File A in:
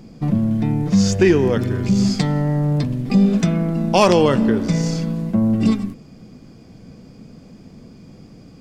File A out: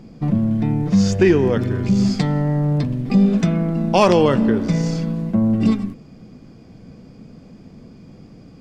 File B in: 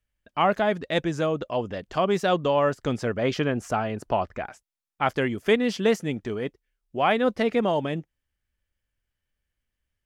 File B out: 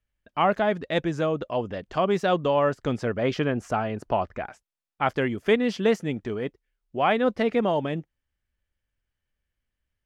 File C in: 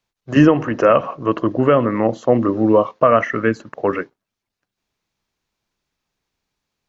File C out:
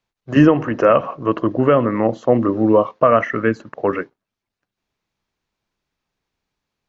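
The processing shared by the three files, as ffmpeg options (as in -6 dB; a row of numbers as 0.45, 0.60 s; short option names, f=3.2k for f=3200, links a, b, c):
-af "highshelf=f=5.6k:g=-8.5"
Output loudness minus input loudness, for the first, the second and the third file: 0.0, 0.0, 0.0 LU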